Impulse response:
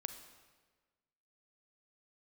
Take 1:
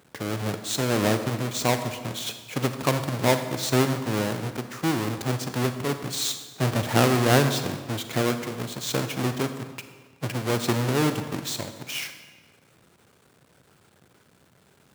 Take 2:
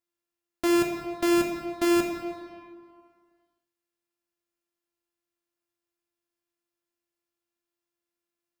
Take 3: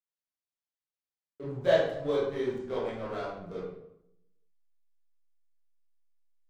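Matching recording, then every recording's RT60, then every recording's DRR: 1; 1.4 s, 2.1 s, 0.75 s; 8.0 dB, 1.5 dB, -9.0 dB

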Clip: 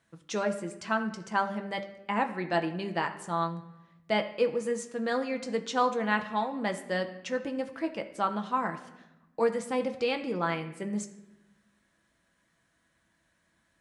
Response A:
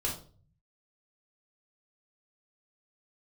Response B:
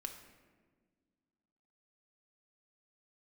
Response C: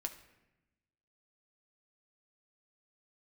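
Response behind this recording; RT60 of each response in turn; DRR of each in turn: C; 0.45 s, 1.6 s, 0.95 s; -3.0 dB, 3.0 dB, 4.5 dB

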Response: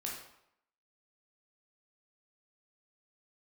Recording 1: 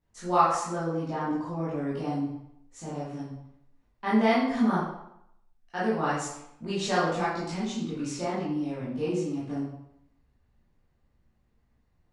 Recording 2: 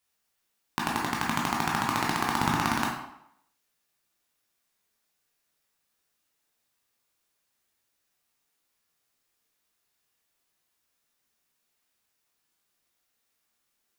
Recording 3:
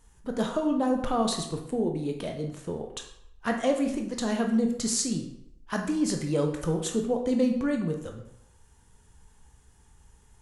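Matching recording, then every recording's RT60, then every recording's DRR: 2; 0.75 s, 0.75 s, 0.75 s; -10.0 dB, -3.0 dB, 3.0 dB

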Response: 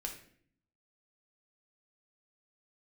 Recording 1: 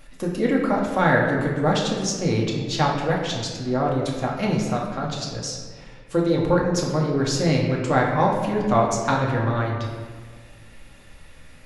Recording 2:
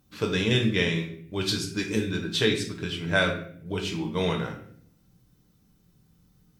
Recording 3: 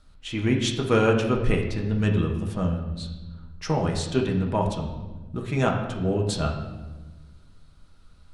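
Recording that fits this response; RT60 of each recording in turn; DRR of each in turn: 2; 1.6 s, 0.60 s, 1.2 s; -2.5 dB, 1.5 dB, 0.0 dB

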